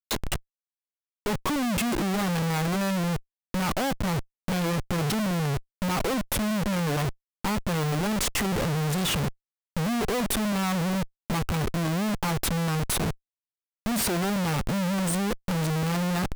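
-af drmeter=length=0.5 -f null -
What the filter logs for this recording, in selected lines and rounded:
Channel 1: DR: 3.1
Overall DR: 3.1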